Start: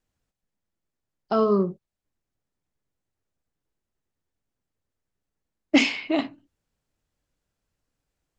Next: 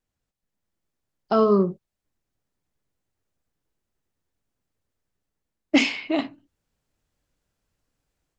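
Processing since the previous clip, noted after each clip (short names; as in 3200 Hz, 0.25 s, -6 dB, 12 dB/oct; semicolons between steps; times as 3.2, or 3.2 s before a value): AGC gain up to 6.5 dB; gain -3.5 dB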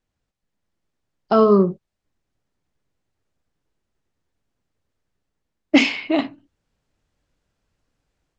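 air absorption 55 m; gain +4.5 dB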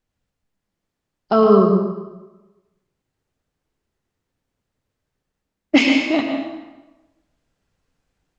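plate-style reverb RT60 1.1 s, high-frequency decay 0.8×, pre-delay 85 ms, DRR 2.5 dB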